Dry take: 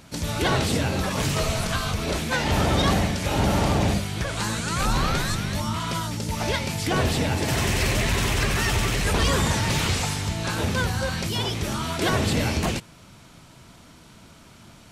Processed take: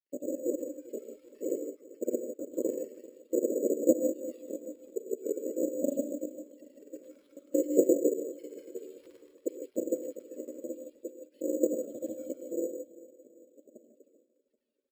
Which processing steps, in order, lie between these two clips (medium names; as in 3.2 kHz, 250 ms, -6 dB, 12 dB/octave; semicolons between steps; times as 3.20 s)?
random holes in the spectrogram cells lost 79%; elliptic band-stop 160–9800 Hz, stop band 40 dB; high-order bell 4 kHz +10.5 dB 2.9 oct; phaser 0.51 Hz, delay 2.6 ms, feedback 70%; rotary cabinet horn 0.65 Hz, later 6.7 Hz, at 12.01 s; granulator; ring modulator 420 Hz; feedback delay 391 ms, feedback 50%, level -18.5 dB; reverberation, pre-delay 3 ms, DRR 6 dB; careless resampling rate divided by 6×, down filtered, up hold